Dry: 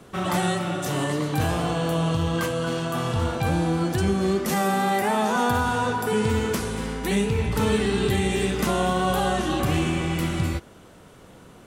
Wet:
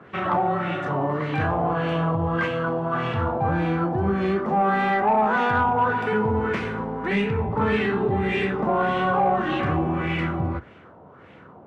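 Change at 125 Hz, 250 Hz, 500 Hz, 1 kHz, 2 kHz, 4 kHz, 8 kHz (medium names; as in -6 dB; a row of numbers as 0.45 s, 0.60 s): -1.5 dB, -1.0 dB, +1.0 dB, +4.0 dB, +2.5 dB, -7.0 dB, under -25 dB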